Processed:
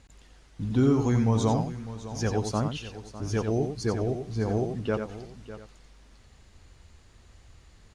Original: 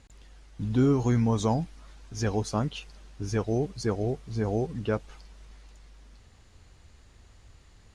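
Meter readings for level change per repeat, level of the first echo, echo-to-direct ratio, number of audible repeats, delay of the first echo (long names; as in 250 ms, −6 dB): repeats not evenly spaced, −7.0 dB, −6.0 dB, 3, 89 ms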